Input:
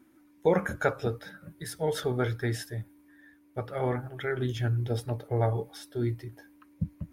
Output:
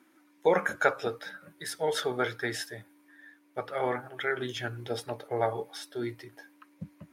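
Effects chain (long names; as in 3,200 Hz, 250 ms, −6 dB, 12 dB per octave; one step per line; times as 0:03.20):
meter weighting curve A
level +3.5 dB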